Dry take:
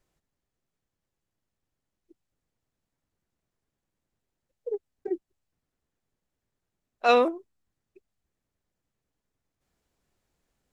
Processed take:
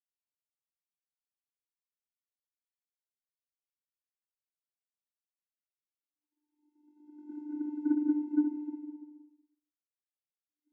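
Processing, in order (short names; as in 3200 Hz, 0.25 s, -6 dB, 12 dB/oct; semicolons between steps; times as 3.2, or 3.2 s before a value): Paulstretch 12×, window 0.25 s, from 4.07; added harmonics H 3 -27 dB, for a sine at -20 dBFS; vocoder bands 16, square 298 Hz; three-band expander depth 100%; gain -2.5 dB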